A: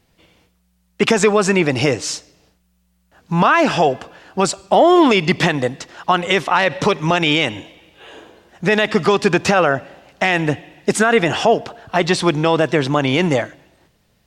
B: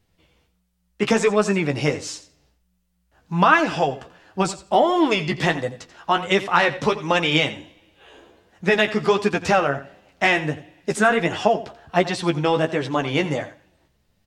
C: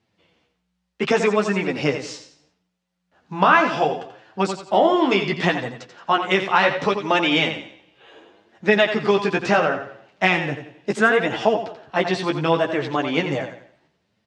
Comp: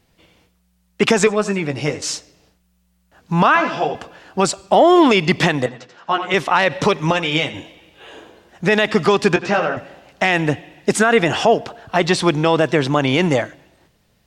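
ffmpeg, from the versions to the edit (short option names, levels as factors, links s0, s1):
-filter_complex "[1:a]asplit=2[s0][s1];[2:a]asplit=3[s2][s3][s4];[0:a]asplit=6[s5][s6][s7][s8][s9][s10];[s5]atrim=end=1.272[s11];[s0]atrim=start=1.268:end=2.022[s12];[s6]atrim=start=2.018:end=3.552[s13];[s2]atrim=start=3.548:end=3.952[s14];[s7]atrim=start=3.948:end=5.662[s15];[s3]atrim=start=5.658:end=6.342[s16];[s8]atrim=start=6.338:end=7.122[s17];[s1]atrim=start=7.118:end=7.542[s18];[s9]atrim=start=7.538:end=9.362[s19];[s4]atrim=start=9.358:end=9.772[s20];[s10]atrim=start=9.768[s21];[s11][s12]acrossfade=d=0.004:c1=hsin:c2=hsin[s22];[s22][s13]acrossfade=d=0.004:c1=hsin:c2=hsin[s23];[s23][s14]acrossfade=d=0.004:c1=hsin:c2=hsin[s24];[s24][s15]acrossfade=d=0.004:c1=hsin:c2=hsin[s25];[s25][s16]acrossfade=d=0.004:c1=hsin:c2=hsin[s26];[s26][s17]acrossfade=d=0.004:c1=hsin:c2=hsin[s27];[s27][s18]acrossfade=d=0.004:c1=hsin:c2=hsin[s28];[s28][s19]acrossfade=d=0.004:c1=hsin:c2=hsin[s29];[s29][s20]acrossfade=d=0.004:c1=hsin:c2=hsin[s30];[s30][s21]acrossfade=d=0.004:c1=hsin:c2=hsin"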